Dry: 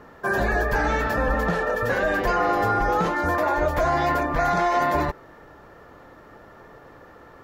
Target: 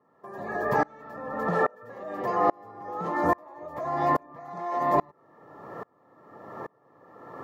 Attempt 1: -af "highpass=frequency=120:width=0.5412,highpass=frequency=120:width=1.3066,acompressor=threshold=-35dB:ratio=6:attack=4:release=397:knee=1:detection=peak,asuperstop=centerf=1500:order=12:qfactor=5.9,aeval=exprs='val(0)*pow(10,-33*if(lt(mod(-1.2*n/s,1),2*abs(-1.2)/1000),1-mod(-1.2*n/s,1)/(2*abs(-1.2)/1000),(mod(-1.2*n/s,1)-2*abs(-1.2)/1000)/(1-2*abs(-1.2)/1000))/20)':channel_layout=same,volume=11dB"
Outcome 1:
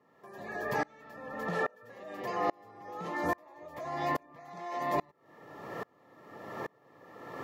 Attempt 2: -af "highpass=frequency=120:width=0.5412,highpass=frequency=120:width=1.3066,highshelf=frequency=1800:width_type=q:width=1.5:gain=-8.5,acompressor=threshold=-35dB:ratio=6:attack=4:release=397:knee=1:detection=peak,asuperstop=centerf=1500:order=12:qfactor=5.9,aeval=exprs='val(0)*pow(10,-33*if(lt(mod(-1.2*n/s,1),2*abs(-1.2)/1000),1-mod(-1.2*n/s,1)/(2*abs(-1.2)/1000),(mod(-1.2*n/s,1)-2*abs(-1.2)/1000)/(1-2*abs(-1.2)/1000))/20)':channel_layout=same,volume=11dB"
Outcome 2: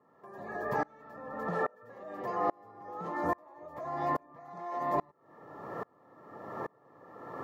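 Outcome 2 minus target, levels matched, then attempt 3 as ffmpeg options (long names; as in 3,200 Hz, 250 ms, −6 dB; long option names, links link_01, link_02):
downward compressor: peak gain reduction +7.5 dB
-af "highpass=frequency=120:width=0.5412,highpass=frequency=120:width=1.3066,highshelf=frequency=1800:width_type=q:width=1.5:gain=-8.5,acompressor=threshold=-26dB:ratio=6:attack=4:release=397:knee=1:detection=peak,asuperstop=centerf=1500:order=12:qfactor=5.9,aeval=exprs='val(0)*pow(10,-33*if(lt(mod(-1.2*n/s,1),2*abs(-1.2)/1000),1-mod(-1.2*n/s,1)/(2*abs(-1.2)/1000),(mod(-1.2*n/s,1)-2*abs(-1.2)/1000)/(1-2*abs(-1.2)/1000))/20)':channel_layout=same,volume=11dB"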